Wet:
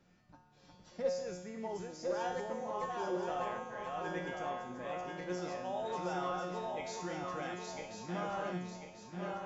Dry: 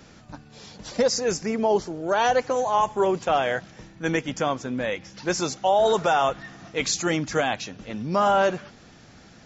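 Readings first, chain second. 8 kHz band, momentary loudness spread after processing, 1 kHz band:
no reading, 7 LU, -15.0 dB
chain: backward echo that repeats 521 ms, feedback 68%, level -2.5 dB; treble shelf 3 kHz -8 dB; feedback comb 180 Hz, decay 0.93 s, harmonics all, mix 90%; trim -2 dB

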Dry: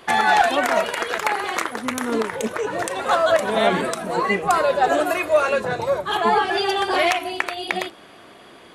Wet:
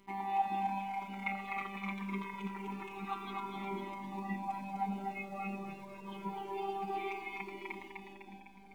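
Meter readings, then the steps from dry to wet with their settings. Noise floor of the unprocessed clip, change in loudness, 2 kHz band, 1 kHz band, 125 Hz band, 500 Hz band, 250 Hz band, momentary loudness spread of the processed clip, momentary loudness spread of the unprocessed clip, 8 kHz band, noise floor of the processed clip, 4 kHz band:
-46 dBFS, -19.0 dB, -21.5 dB, -16.5 dB, -9.5 dB, -26.0 dB, -13.0 dB, 10 LU, 8 LU, under -30 dB, -54 dBFS, -26.5 dB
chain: time-frequency box 1.22–3.33 s, 920–4100 Hz +8 dB; tone controls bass +14 dB, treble -3 dB; hum 50 Hz, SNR 16 dB; vowel filter u; robot voice 196 Hz; in parallel at -11 dB: word length cut 8-bit, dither none; on the sum: two-band feedback delay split 690 Hz, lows 577 ms, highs 252 ms, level -3 dB; Shepard-style flanger falling 0.26 Hz; trim -3.5 dB

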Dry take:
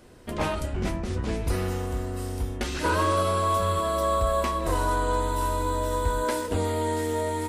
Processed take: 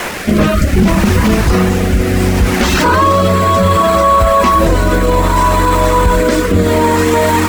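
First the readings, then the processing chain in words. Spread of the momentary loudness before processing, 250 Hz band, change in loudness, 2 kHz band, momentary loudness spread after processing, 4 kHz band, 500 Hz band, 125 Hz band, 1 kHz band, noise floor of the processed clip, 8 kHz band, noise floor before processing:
7 LU, +19.5 dB, +15.5 dB, +17.0 dB, 3 LU, +15.5 dB, +14.5 dB, +16.0 dB, +15.0 dB, -15 dBFS, +14.0 dB, -33 dBFS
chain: band noise 330–2400 Hz -40 dBFS; reverb removal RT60 0.79 s; dynamic bell 1.1 kHz, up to +5 dB, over -43 dBFS, Q 2.7; steep low-pass 8.1 kHz; on a send: echo that smears into a reverb 530 ms, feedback 60%, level -15 dB; on the sum: bit crusher 7-bit; peaking EQ 200 Hz +11.5 dB 0.36 oct; rotary cabinet horn 0.65 Hz; loudness maximiser +23.5 dB; trim -1 dB; AAC 192 kbps 48 kHz

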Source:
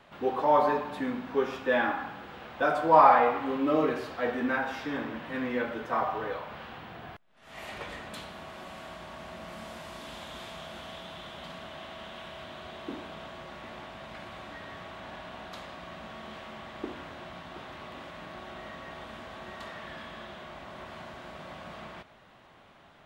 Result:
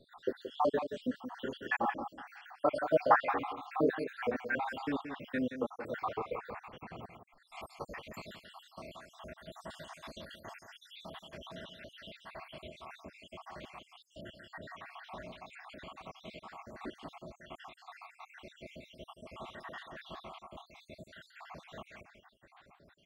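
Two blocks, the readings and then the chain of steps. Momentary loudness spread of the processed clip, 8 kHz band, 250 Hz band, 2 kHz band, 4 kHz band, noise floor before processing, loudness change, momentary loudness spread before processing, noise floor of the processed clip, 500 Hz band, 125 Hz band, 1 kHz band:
20 LU, -7.0 dB, -6.0 dB, -5.5 dB, -6.5 dB, -56 dBFS, -9.0 dB, 17 LU, -68 dBFS, -6.5 dB, -5.0 dB, -9.0 dB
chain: random holes in the spectrogram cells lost 77%; delay 175 ms -9.5 dB

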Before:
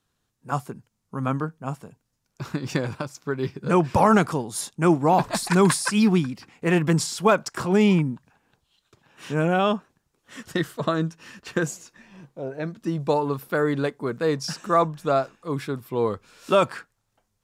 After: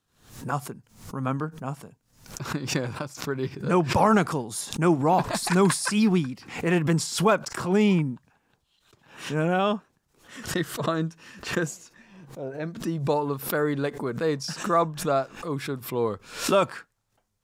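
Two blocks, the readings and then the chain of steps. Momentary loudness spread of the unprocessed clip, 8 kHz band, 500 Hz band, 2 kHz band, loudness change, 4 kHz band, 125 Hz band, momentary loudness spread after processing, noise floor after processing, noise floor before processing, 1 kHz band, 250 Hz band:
15 LU, -0.5 dB, -2.5 dB, -1.5 dB, -2.0 dB, 0.0 dB, -2.0 dB, 15 LU, -72 dBFS, -76 dBFS, -2.0 dB, -2.0 dB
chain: swell ahead of each attack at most 110 dB/s; trim -2.5 dB

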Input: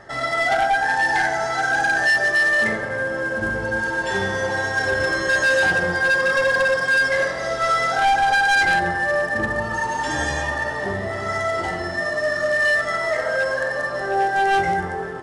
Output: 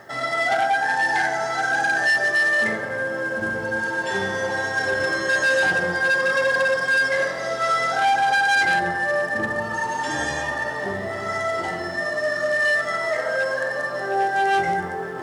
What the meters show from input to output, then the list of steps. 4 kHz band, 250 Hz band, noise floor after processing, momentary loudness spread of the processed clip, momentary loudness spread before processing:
-1.5 dB, -2.0 dB, -29 dBFS, 8 LU, 7 LU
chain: high-pass 120 Hz 12 dB/octave; reverse; upward compressor, threshold -26 dBFS; reverse; bit crusher 10-bit; trim -1.5 dB

